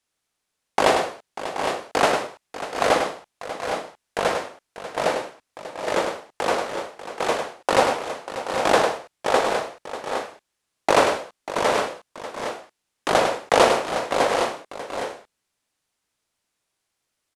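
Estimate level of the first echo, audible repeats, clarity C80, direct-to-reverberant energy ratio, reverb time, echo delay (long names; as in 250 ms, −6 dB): −6.5 dB, 4, no reverb audible, no reverb audible, no reverb audible, 102 ms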